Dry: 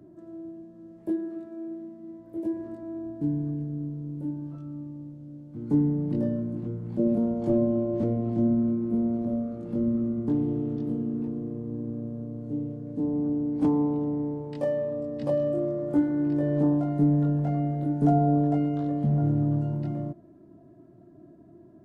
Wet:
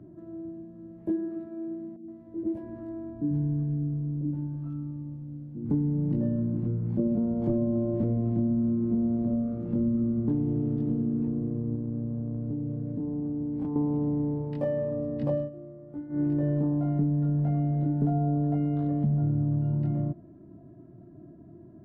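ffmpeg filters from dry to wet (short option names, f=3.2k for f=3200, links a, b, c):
-filter_complex "[0:a]asettb=1/sr,asplit=3[a][b][c];[a]atrim=end=1.964[d];[b]atrim=start=1.96:end=5.7,asetpts=PTS-STARTPTS,afade=t=in:d=0.004:c=qsin,afade=t=out:st=3.736:d=0.004:c=qsin,acrossover=split=170|520[e][f][g];[e]adelay=90[h];[g]adelay=120[i];[h][f][i]amix=inputs=3:normalize=0,atrim=end_sample=164934[j];[c]atrim=start=5.696[k];[d][j]acrossfade=d=0.004:c1=hsin:c2=qsin[l];[l][k]acrossfade=d=0.004:c1=qsin:c2=hsin,asettb=1/sr,asplit=3[m][n][o];[m]atrim=end=11.754[p];[n]atrim=start=11.75:end=13.76,asetpts=PTS-STARTPTS,afade=t=in:d=0.004:c=qsin,afade=t=out:st=2.006:d=0.004:c=qsin,acompressor=threshold=-31dB:ratio=6:attack=3.2:release=140:knee=1:detection=peak[q];[o]atrim=start=13.756[r];[p][q]acrossfade=d=0.004:c1=hsin:c2=qsin[s];[s][r]acrossfade=d=0.004:c1=qsin:c2=hsin,asplit=3[t][u][v];[t]atrim=end=15.5,asetpts=PTS-STARTPTS,afade=t=out:st=15.36:d=0.14:silence=0.141254[w];[u]atrim=start=15.5:end=16.09,asetpts=PTS-STARTPTS,volume=-17dB[x];[v]atrim=start=16.09,asetpts=PTS-STARTPTS,afade=t=in:d=0.14:silence=0.141254[y];[w][x][y]concat=n=3:v=0:a=1,bass=f=250:g=8,treble=f=4k:g=-13,acompressor=threshold=-22dB:ratio=6,volume=-1dB"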